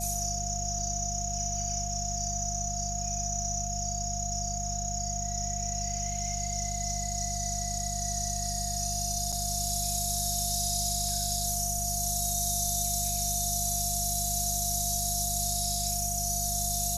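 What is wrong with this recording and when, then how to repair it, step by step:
hum 50 Hz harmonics 4 -36 dBFS
tone 700 Hz -37 dBFS
9.32–9.33 gap 5.8 ms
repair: notch 700 Hz, Q 30; de-hum 50 Hz, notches 4; interpolate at 9.32, 5.8 ms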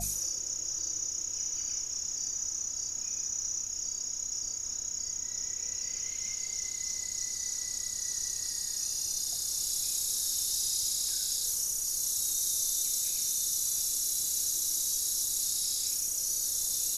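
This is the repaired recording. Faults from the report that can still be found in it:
none

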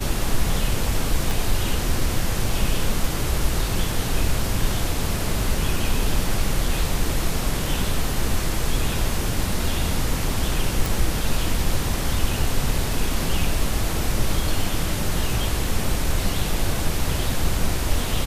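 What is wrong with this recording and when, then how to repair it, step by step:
1.31 pop
10.86 pop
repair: de-click

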